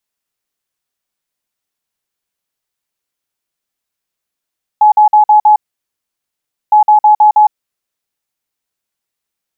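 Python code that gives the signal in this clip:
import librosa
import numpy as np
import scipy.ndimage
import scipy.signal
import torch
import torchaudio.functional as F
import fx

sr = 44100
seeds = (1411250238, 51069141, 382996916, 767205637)

y = fx.beep_pattern(sr, wave='sine', hz=847.0, on_s=0.11, off_s=0.05, beeps=5, pause_s=1.16, groups=2, level_db=-3.0)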